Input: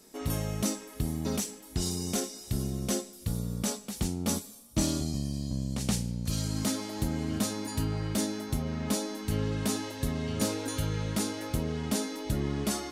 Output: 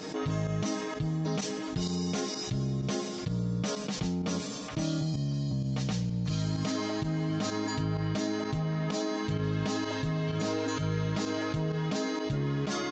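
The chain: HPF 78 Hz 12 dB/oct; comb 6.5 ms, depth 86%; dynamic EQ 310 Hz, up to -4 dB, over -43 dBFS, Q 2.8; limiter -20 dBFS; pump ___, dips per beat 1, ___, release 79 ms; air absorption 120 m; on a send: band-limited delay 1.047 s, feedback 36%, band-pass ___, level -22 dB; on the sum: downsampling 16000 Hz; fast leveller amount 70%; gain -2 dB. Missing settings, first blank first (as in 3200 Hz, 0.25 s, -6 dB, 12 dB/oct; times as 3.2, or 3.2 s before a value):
128 bpm, -12 dB, 1500 Hz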